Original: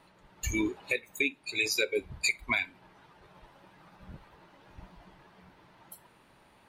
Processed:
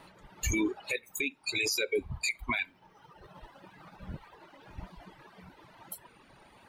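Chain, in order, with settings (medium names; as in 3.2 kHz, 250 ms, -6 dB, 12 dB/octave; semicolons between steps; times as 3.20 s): 2.67–4.87 s: median filter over 5 samples; reverb removal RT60 1.2 s; peak limiter -27.5 dBFS, peak gain reduction 11.5 dB; trim +6.5 dB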